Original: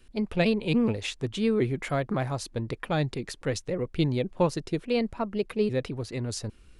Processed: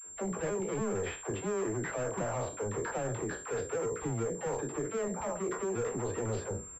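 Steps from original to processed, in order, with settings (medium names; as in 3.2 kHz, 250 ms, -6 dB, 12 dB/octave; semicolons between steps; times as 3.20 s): spectral sustain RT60 0.30 s; high-pass 72 Hz 12 dB/octave; high-order bell 930 Hz +11.5 dB 2.4 oct; gain riding within 4 dB 0.5 s; peak limiter -11.5 dBFS, peak gain reduction 6.5 dB; pitch shift -1.5 st; overload inside the chain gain 26.5 dB; treble shelf 2.5 kHz -11.5 dB; phase dispersion lows, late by 69 ms, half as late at 480 Hz; class-D stage that switches slowly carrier 7.4 kHz; trim -4.5 dB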